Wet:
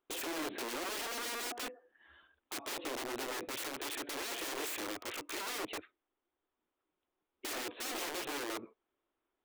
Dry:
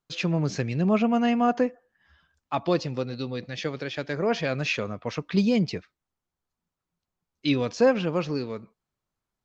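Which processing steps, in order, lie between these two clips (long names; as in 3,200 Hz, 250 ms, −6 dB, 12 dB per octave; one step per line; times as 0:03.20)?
downsampling to 8,000 Hz
downward compressor 2.5 to 1, threshold −33 dBFS, peak gain reduction 11.5 dB
wrap-around overflow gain 36 dB
low shelf with overshoot 230 Hz −11.5 dB, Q 3
level +1 dB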